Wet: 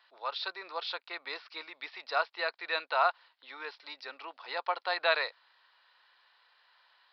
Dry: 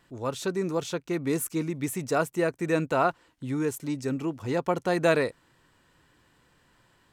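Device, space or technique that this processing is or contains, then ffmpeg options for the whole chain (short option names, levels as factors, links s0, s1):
musical greeting card: -filter_complex "[0:a]asettb=1/sr,asplit=3[s0][s1][s2];[s0]atrim=end=2.384[s3];[s1]atrim=start=2.38:end=2.84,asetpts=PTS-STARTPTS,afade=t=in:d=0.004:c=qsin,afade=t=out:st=0.456:d=0.004:c=qsin,highshelf=f=5600:t=q:w=3:g=-6[s4];[s2]atrim=start=2.836[s5];[s3][s4]acrossfade=d=0.004:c1=hsin:c2=qsin[s6];[s6][s5]acrossfade=d=0.004:c1=qsin:c2=hsin,aresample=11025,aresample=44100,highpass=f=740:w=0.5412,highpass=f=740:w=1.3066,equalizer=f=4000:t=o:w=0.4:g=6.5"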